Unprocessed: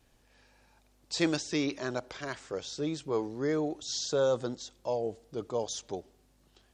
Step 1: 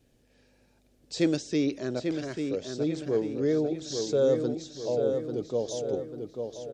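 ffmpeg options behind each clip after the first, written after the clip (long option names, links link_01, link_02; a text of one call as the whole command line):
ffmpeg -i in.wav -filter_complex "[0:a]equalizer=frequency=125:width_type=o:width=1:gain=5,equalizer=frequency=250:width_type=o:width=1:gain=6,equalizer=frequency=500:width_type=o:width=1:gain=7,equalizer=frequency=1000:width_type=o:width=1:gain=-9,asplit=2[link_01][link_02];[link_02]adelay=843,lowpass=frequency=3700:poles=1,volume=-5.5dB,asplit=2[link_03][link_04];[link_04]adelay=843,lowpass=frequency=3700:poles=1,volume=0.5,asplit=2[link_05][link_06];[link_06]adelay=843,lowpass=frequency=3700:poles=1,volume=0.5,asplit=2[link_07][link_08];[link_08]adelay=843,lowpass=frequency=3700:poles=1,volume=0.5,asplit=2[link_09][link_10];[link_10]adelay=843,lowpass=frequency=3700:poles=1,volume=0.5,asplit=2[link_11][link_12];[link_12]adelay=843,lowpass=frequency=3700:poles=1,volume=0.5[link_13];[link_03][link_05][link_07][link_09][link_11][link_13]amix=inputs=6:normalize=0[link_14];[link_01][link_14]amix=inputs=2:normalize=0,volume=-2.5dB" out.wav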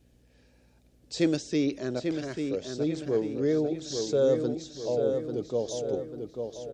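ffmpeg -i in.wav -af "aeval=exprs='val(0)+0.000708*(sin(2*PI*60*n/s)+sin(2*PI*2*60*n/s)/2+sin(2*PI*3*60*n/s)/3+sin(2*PI*4*60*n/s)/4+sin(2*PI*5*60*n/s)/5)':channel_layout=same" out.wav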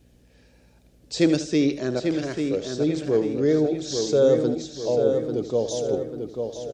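ffmpeg -i in.wav -af "aecho=1:1:78|156|234:0.237|0.0735|0.0228,volume=5.5dB" out.wav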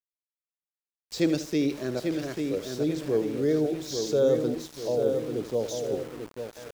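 ffmpeg -i in.wav -af "dynaudnorm=framelen=180:gausssize=9:maxgain=4dB,aeval=exprs='val(0)*gte(abs(val(0)),0.0237)':channel_layout=same,volume=-8dB" out.wav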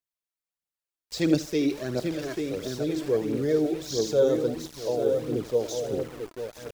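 ffmpeg -i in.wav -af "aphaser=in_gain=1:out_gain=1:delay=3.2:decay=0.48:speed=1.5:type=triangular" out.wav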